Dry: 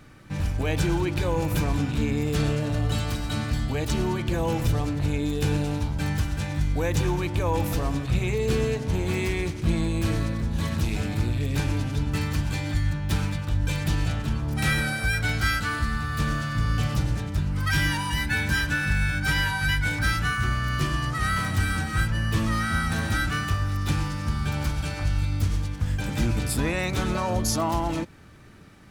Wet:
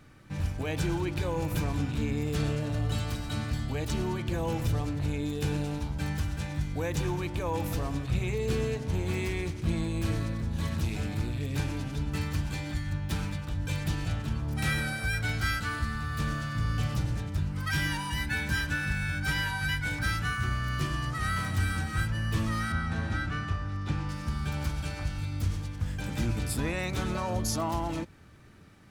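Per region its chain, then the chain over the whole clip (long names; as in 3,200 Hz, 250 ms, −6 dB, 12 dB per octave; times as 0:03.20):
0:22.72–0:24.09: low-pass filter 7,200 Hz + high-shelf EQ 3,000 Hz −9 dB
whole clip: parametric band 89 Hz +3.5 dB 0.73 octaves; mains-hum notches 50/100 Hz; level −5.5 dB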